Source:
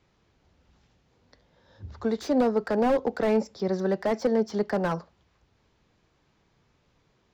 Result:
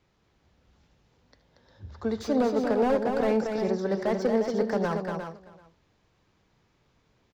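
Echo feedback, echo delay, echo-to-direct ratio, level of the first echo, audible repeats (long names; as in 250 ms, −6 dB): repeats not evenly spaced, 78 ms, −3.0 dB, −16.0 dB, 6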